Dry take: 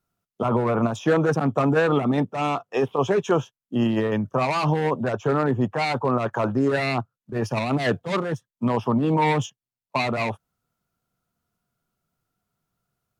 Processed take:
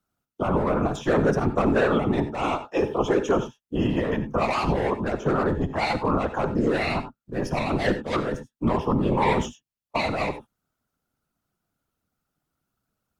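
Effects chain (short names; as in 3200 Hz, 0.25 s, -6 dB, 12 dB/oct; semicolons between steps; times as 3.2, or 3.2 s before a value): whisperiser; non-linear reverb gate 0.11 s rising, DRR 10.5 dB; gain -1.5 dB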